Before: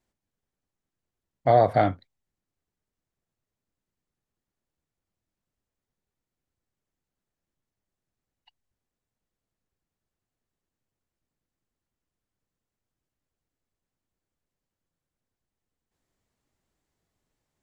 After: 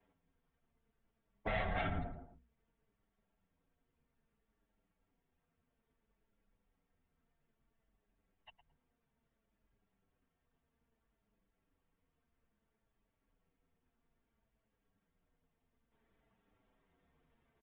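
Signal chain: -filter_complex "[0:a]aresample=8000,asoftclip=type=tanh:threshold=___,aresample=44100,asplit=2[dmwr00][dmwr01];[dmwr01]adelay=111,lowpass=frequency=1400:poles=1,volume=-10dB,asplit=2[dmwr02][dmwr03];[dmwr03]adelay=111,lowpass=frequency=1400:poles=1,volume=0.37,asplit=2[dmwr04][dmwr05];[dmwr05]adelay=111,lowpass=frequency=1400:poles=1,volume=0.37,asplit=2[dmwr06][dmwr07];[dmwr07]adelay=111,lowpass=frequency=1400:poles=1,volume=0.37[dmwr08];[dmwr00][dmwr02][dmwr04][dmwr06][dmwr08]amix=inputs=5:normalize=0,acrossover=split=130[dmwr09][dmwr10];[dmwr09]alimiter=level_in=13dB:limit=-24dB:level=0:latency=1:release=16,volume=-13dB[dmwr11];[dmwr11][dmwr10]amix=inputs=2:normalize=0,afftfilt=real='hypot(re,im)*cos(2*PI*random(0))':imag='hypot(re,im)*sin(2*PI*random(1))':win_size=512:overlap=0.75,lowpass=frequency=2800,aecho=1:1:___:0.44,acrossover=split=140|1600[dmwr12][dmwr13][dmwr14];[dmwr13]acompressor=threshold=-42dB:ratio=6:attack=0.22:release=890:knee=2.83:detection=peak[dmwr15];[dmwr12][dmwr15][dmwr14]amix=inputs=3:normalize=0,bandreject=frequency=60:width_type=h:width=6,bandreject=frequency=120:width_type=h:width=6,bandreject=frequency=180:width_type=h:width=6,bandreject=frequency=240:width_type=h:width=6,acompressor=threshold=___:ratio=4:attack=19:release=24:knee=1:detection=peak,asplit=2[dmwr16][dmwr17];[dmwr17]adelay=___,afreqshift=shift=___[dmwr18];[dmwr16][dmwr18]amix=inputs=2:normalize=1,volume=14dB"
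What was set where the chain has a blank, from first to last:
-19dB, 4.4, -50dB, 7.6, -0.6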